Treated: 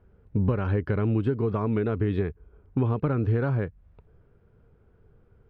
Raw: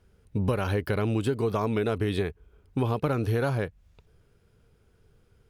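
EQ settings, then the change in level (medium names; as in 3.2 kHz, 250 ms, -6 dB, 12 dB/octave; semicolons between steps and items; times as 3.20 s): low-pass 1.4 kHz 12 dB/octave; dynamic bell 700 Hz, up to -8 dB, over -43 dBFS, Q 1; +3.5 dB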